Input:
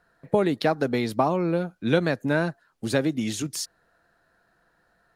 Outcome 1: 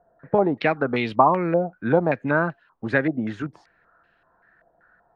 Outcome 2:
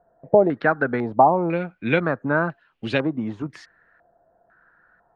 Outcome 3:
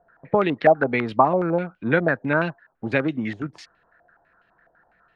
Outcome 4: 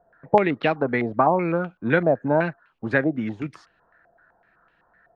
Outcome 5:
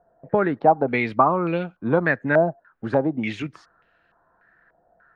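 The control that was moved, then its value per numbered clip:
stepped low-pass, rate: 5.2, 2, 12, 7.9, 3.4 Hz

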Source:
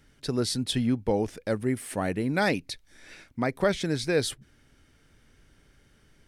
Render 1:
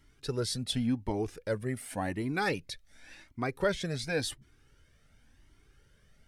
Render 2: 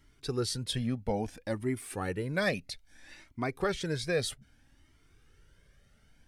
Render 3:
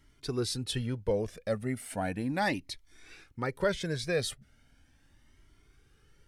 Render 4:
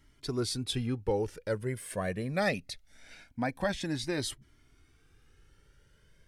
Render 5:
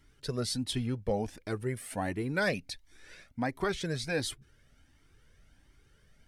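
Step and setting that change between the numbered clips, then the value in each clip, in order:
cascading flanger, rate: 0.91, 0.61, 0.37, 0.23, 1.4 Hz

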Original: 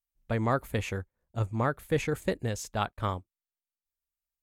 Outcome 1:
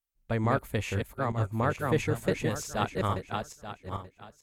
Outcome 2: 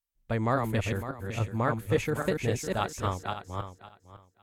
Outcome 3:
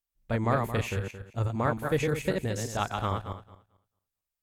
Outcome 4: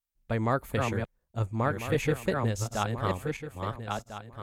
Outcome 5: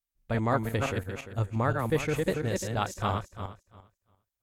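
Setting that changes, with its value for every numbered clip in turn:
regenerating reverse delay, time: 0.441, 0.278, 0.111, 0.674, 0.173 s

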